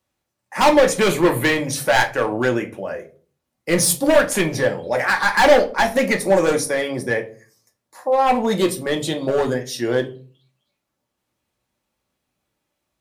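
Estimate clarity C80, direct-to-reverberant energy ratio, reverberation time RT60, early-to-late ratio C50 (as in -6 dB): 20.5 dB, 3.0 dB, 0.40 s, 15.5 dB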